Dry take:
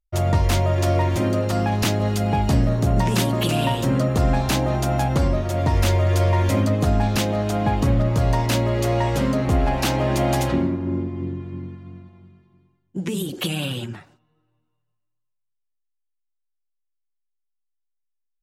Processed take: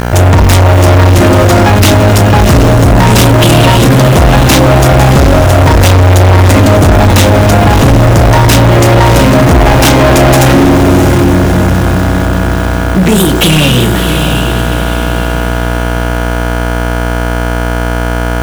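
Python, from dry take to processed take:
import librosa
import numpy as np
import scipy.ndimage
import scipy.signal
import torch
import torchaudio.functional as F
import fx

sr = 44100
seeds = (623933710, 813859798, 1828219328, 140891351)

y = fx.dmg_buzz(x, sr, base_hz=60.0, harmonics=29, level_db=-35.0, tilt_db=-3, odd_only=False)
y = fx.quant_dither(y, sr, seeds[0], bits=8, dither='none')
y = fx.notch(y, sr, hz=4400.0, q=12.0)
y = fx.doubler(y, sr, ms=32.0, db=-10.5)
y = fx.echo_diffused(y, sr, ms=673, feedback_pct=43, wet_db=-9.0)
y = fx.leveller(y, sr, passes=5)
y = F.gain(torch.from_numpy(y), 4.5).numpy()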